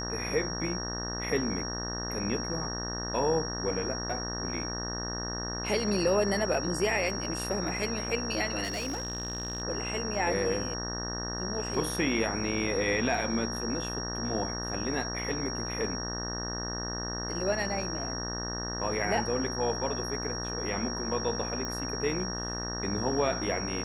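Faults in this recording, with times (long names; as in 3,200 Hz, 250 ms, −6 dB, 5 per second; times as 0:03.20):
mains buzz 60 Hz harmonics 31 −37 dBFS
whistle 5,600 Hz −36 dBFS
0:08.63–0:09.62: clipping −29 dBFS
0:21.65: click −22 dBFS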